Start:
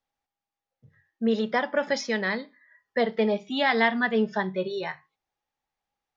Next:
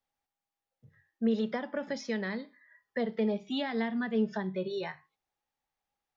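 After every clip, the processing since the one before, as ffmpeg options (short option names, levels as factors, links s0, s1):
-filter_complex "[0:a]acrossover=split=380[s0][s1];[s1]acompressor=threshold=0.0224:ratio=6[s2];[s0][s2]amix=inputs=2:normalize=0,volume=0.75"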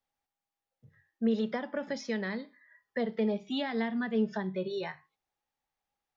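-af anull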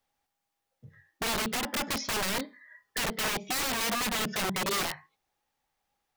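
-af "aeval=exprs='(mod(42.2*val(0)+1,2)-1)/42.2':c=same,volume=2.37"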